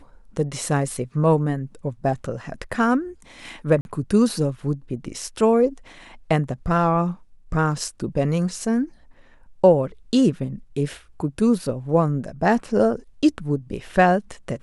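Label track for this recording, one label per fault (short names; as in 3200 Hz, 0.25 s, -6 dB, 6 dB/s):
3.810000	3.850000	gap 41 ms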